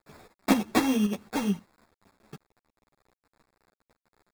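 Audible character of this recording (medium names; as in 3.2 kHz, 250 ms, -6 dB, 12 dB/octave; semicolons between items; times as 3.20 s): a quantiser's noise floor 10-bit, dither none; tremolo saw up 3.8 Hz, depth 65%; aliases and images of a low sample rate 3 kHz, jitter 0%; a shimmering, thickened sound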